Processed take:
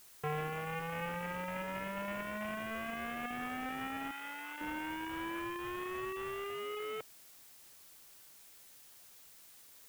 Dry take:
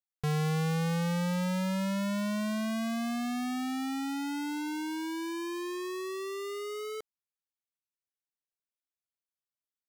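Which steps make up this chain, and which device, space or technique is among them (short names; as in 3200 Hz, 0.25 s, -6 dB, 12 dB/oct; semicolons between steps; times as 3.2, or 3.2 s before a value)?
reverb removal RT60 1.7 s; army field radio (BPF 360–3300 Hz; CVSD 16 kbps; white noise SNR 20 dB); high shelf 5800 Hz +5 dB; 4.11–4.61 HPF 1300 Hz 6 dB/oct; gain +5 dB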